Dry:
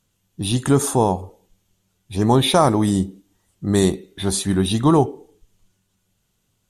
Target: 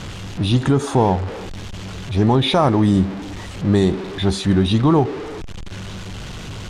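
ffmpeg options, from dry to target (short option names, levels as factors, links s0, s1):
-af "aeval=exprs='val(0)+0.5*0.0501*sgn(val(0))':c=same,lowpass=4100,equalizer=f=67:w=0.63:g=3.5,alimiter=limit=0.447:level=0:latency=1:release=147,volume=1.19"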